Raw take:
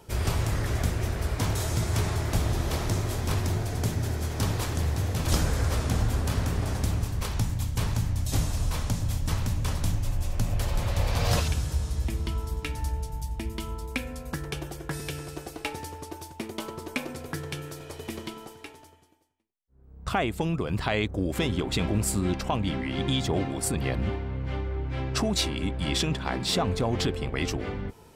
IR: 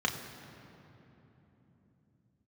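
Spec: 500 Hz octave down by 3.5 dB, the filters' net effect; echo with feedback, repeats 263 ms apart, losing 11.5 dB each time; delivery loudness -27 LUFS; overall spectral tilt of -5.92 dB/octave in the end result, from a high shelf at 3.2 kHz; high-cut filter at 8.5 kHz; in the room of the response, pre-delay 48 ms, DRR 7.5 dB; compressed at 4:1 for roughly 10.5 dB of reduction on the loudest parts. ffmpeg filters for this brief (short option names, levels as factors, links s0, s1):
-filter_complex "[0:a]lowpass=8500,equalizer=f=500:t=o:g=-4.5,highshelf=f=3200:g=-7,acompressor=threshold=0.02:ratio=4,aecho=1:1:263|526|789:0.266|0.0718|0.0194,asplit=2[s0][s1];[1:a]atrim=start_sample=2205,adelay=48[s2];[s1][s2]afir=irnorm=-1:irlink=0,volume=0.158[s3];[s0][s3]amix=inputs=2:normalize=0,volume=2.99"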